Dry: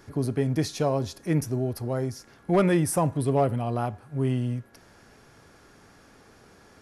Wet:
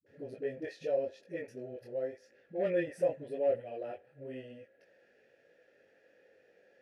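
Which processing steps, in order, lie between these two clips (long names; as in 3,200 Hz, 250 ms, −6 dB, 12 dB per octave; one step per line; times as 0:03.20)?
formant filter e
multi-voice chorus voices 2, 0.86 Hz, delay 21 ms, depth 3.3 ms
all-pass dispersion highs, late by 64 ms, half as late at 300 Hz
level +4 dB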